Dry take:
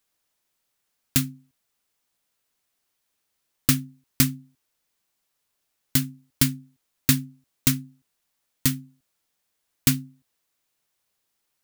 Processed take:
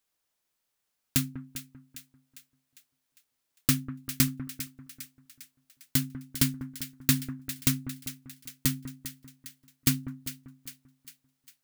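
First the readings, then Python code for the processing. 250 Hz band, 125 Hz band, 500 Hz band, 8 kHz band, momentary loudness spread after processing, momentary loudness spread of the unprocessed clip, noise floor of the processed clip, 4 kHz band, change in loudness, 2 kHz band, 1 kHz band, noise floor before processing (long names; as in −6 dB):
−4.0 dB, −4.0 dB, −4.0 dB, −4.0 dB, 19 LU, 11 LU, −81 dBFS, −4.0 dB, −6.0 dB, −4.0 dB, −4.0 dB, −77 dBFS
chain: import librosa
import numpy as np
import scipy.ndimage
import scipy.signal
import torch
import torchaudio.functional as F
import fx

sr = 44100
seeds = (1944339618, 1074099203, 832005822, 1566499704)

y = fx.echo_split(x, sr, split_hz=1500.0, low_ms=196, high_ms=402, feedback_pct=52, wet_db=-11.5)
y = y * 10.0 ** (-4.5 / 20.0)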